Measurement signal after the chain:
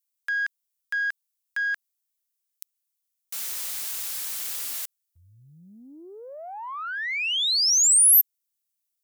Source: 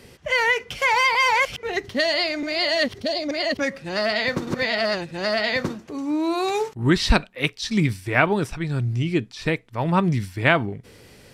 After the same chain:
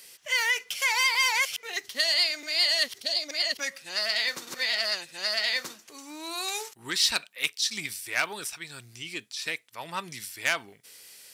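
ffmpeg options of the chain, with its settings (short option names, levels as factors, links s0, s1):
-af "acontrast=75,aeval=exprs='0.944*(cos(1*acos(clip(val(0)/0.944,-1,1)))-cos(1*PI/2))+0.0106*(cos(6*acos(clip(val(0)/0.944,-1,1)))-cos(6*PI/2))':c=same,aderivative"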